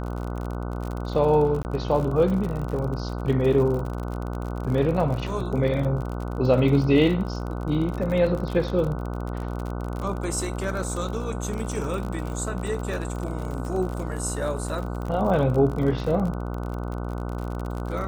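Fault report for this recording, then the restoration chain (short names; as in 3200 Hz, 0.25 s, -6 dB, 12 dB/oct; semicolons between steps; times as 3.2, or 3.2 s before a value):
buzz 60 Hz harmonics 25 -30 dBFS
crackle 48/s -30 dBFS
1.63–1.65 gap 19 ms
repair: de-click; de-hum 60 Hz, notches 25; interpolate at 1.63, 19 ms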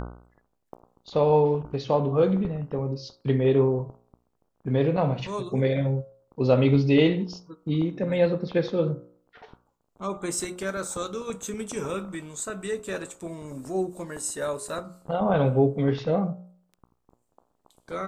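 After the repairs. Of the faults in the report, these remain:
none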